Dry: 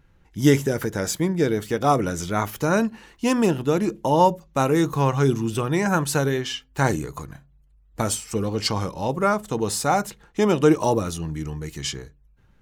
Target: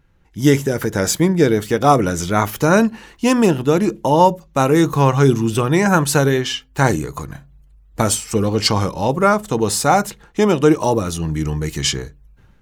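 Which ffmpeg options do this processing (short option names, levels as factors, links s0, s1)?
-af "dynaudnorm=f=140:g=5:m=3.16"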